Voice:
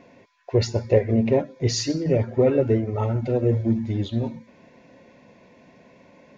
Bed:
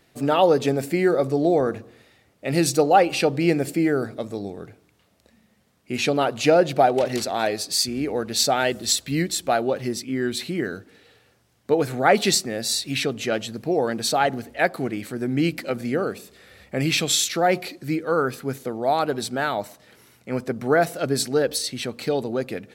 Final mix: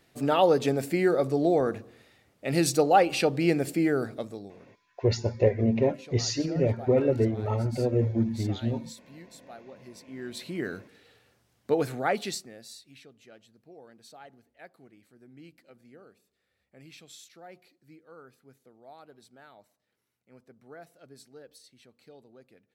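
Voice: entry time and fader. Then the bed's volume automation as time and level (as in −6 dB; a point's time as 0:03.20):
4.50 s, −4.0 dB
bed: 0:04.18 −4 dB
0:04.89 −25.5 dB
0:09.67 −25.5 dB
0:10.68 −5 dB
0:11.85 −5 dB
0:13.02 −28.5 dB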